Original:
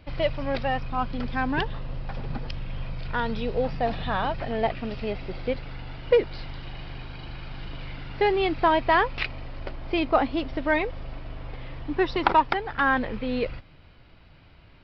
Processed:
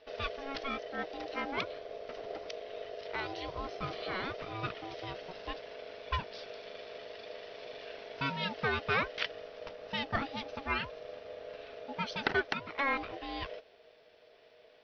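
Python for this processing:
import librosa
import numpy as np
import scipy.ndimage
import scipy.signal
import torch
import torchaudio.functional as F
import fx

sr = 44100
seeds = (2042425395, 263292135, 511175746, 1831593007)

y = scipy.signal.sosfilt(scipy.signal.butter(4, 46.0, 'highpass', fs=sr, output='sos'), x)
y = fx.peak_eq(y, sr, hz=440.0, db=-13.0, octaves=2.9)
y = y * np.sin(2.0 * np.pi * 550.0 * np.arange(len(y)) / sr)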